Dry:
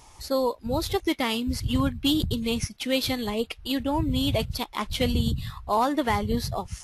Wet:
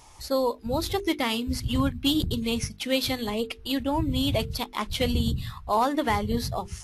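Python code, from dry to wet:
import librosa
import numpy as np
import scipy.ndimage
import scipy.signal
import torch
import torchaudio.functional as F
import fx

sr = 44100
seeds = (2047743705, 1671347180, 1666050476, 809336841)

y = fx.hum_notches(x, sr, base_hz=50, count=9)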